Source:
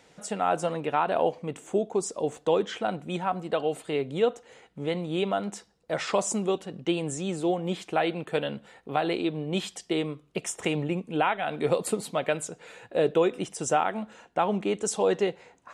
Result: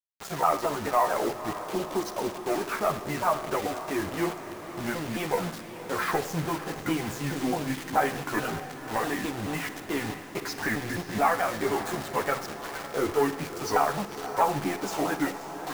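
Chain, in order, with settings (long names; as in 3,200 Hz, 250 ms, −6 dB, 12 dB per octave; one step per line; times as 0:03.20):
pitch shifter swept by a sawtooth −7 semitones, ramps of 215 ms
low-pass filter 6,000 Hz
high-shelf EQ 4,000 Hz −5.5 dB
in parallel at +0.5 dB: downward compressor, threshold −33 dBFS, peak gain reduction 13.5 dB
on the sum: soft clipping −14 dBFS, distortion −20 dB
multi-voice chorus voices 4, 0.18 Hz, delay 12 ms, depth 2.3 ms
flat-topped bell 1,200 Hz +9.5 dB
bit reduction 6 bits
feedback delay with all-pass diffusion 536 ms, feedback 67%, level −12 dB
on a send at −13 dB: convolution reverb RT60 0.75 s, pre-delay 42 ms
on the sum: level −1.5 dB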